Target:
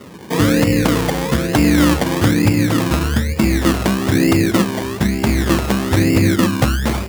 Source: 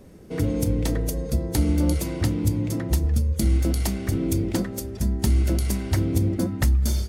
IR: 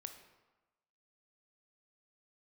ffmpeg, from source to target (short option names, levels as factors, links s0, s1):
-af "acrusher=samples=26:mix=1:aa=0.000001:lfo=1:lforange=15.6:lforate=1.1,highpass=130,alimiter=level_in=4.47:limit=0.891:release=50:level=0:latency=1,volume=0.891"